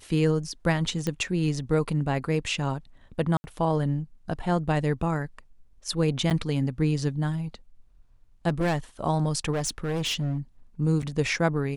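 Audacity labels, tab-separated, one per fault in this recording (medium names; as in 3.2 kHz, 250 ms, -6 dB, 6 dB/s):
1.070000	1.070000	pop -15 dBFS
3.370000	3.440000	dropout 70 ms
6.300000	6.310000	dropout 8.6 ms
8.480000	8.780000	clipped -21 dBFS
9.530000	10.380000	clipped -24 dBFS
11.020000	11.030000	dropout 6.8 ms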